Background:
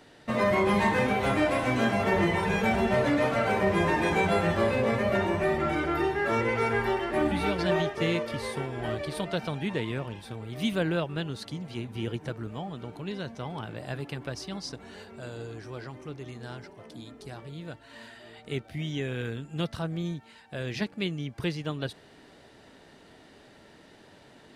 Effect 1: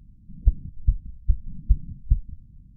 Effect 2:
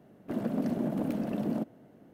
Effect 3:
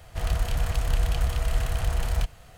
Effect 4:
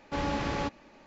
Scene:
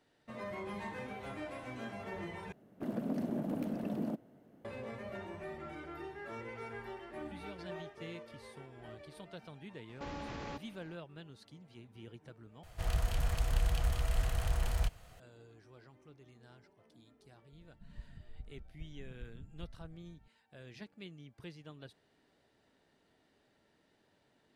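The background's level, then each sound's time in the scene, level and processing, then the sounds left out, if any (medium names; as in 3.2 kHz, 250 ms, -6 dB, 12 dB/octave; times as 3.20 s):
background -18.5 dB
2.52 s: replace with 2 -5.5 dB
9.89 s: add 4 -6.5 dB + compression 3:1, threshold -34 dBFS
12.63 s: replace with 3 -7 dB
17.52 s: add 1 -13.5 dB + compression, threshold -28 dBFS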